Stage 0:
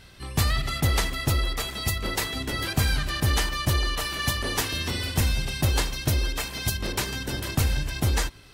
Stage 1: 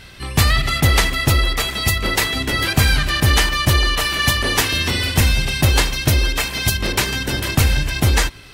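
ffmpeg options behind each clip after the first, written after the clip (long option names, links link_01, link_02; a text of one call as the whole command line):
ffmpeg -i in.wav -af "equalizer=frequency=2300:width=1.1:gain=4,volume=8dB" out.wav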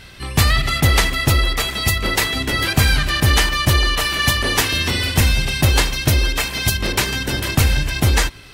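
ffmpeg -i in.wav -af anull out.wav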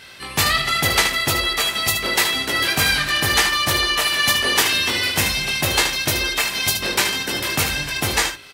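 ffmpeg -i in.wav -filter_complex "[0:a]highpass=frequency=490:poles=1,asplit=2[link_01][link_02];[link_02]aecho=0:1:20|75:0.473|0.422[link_03];[link_01][link_03]amix=inputs=2:normalize=0" out.wav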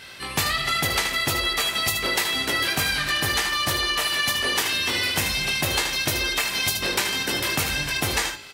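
ffmpeg -i in.wav -af "bandreject=frequency=214.5:width_type=h:width=4,bandreject=frequency=429:width_type=h:width=4,bandreject=frequency=643.5:width_type=h:width=4,bandreject=frequency=858:width_type=h:width=4,bandreject=frequency=1072.5:width_type=h:width=4,bandreject=frequency=1287:width_type=h:width=4,bandreject=frequency=1501.5:width_type=h:width=4,bandreject=frequency=1716:width_type=h:width=4,bandreject=frequency=1930.5:width_type=h:width=4,bandreject=frequency=2145:width_type=h:width=4,bandreject=frequency=2359.5:width_type=h:width=4,bandreject=frequency=2574:width_type=h:width=4,bandreject=frequency=2788.5:width_type=h:width=4,bandreject=frequency=3003:width_type=h:width=4,bandreject=frequency=3217.5:width_type=h:width=4,bandreject=frequency=3432:width_type=h:width=4,bandreject=frequency=3646.5:width_type=h:width=4,bandreject=frequency=3861:width_type=h:width=4,bandreject=frequency=4075.5:width_type=h:width=4,bandreject=frequency=4290:width_type=h:width=4,bandreject=frequency=4504.5:width_type=h:width=4,bandreject=frequency=4719:width_type=h:width=4,bandreject=frequency=4933.5:width_type=h:width=4,bandreject=frequency=5148:width_type=h:width=4,bandreject=frequency=5362.5:width_type=h:width=4,bandreject=frequency=5577:width_type=h:width=4,bandreject=frequency=5791.5:width_type=h:width=4,bandreject=frequency=6006:width_type=h:width=4,bandreject=frequency=6220.5:width_type=h:width=4,bandreject=frequency=6435:width_type=h:width=4,bandreject=frequency=6649.5:width_type=h:width=4,bandreject=frequency=6864:width_type=h:width=4,bandreject=frequency=7078.5:width_type=h:width=4,bandreject=frequency=7293:width_type=h:width=4,bandreject=frequency=7507.5:width_type=h:width=4,bandreject=frequency=7722:width_type=h:width=4,bandreject=frequency=7936.5:width_type=h:width=4,acompressor=threshold=-20dB:ratio=6" out.wav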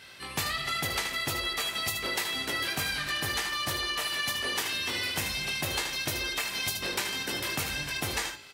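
ffmpeg -i in.wav -af "highpass=46,volume=-7.5dB" out.wav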